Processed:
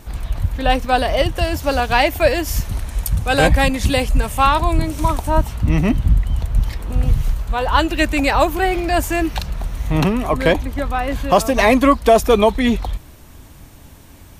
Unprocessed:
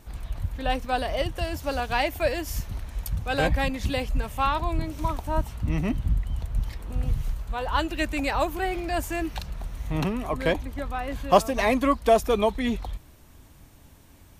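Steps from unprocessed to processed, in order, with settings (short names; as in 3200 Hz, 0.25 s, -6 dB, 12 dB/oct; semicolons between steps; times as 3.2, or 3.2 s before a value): 2.65–5.3 bell 9300 Hz +7 dB 0.88 oct; maximiser +11 dB; gain -1 dB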